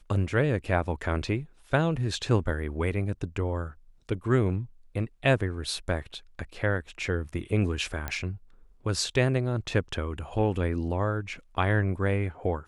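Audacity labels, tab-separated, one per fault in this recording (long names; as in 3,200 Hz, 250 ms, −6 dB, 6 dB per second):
8.080000	8.080000	click −16 dBFS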